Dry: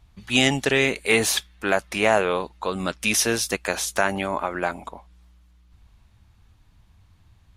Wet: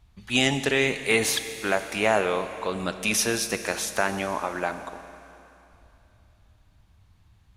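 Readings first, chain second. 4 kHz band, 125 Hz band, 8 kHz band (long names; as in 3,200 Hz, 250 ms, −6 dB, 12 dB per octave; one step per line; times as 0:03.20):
−2.5 dB, −2.5 dB, −2.5 dB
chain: four-comb reverb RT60 3 s, combs from 29 ms, DRR 9.5 dB
level −3 dB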